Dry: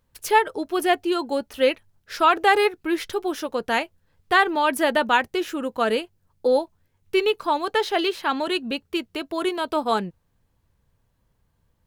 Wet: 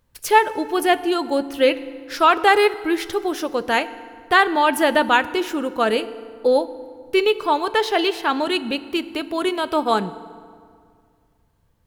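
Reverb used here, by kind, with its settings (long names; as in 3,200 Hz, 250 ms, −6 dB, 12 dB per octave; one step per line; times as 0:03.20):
feedback delay network reverb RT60 2.1 s, low-frequency decay 1.1×, high-frequency decay 0.65×, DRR 14 dB
level +3 dB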